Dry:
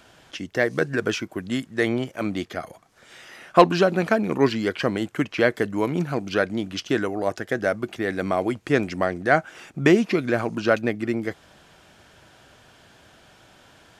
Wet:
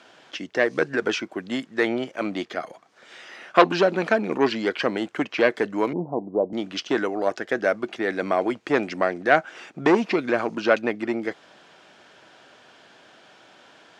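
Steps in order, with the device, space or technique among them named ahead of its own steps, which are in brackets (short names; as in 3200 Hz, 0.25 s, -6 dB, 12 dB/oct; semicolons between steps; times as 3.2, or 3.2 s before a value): public-address speaker with an overloaded transformer (core saturation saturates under 1100 Hz; BPF 260–5700 Hz); 5.93–6.53 steep low-pass 1000 Hz 72 dB/oct; gain +2 dB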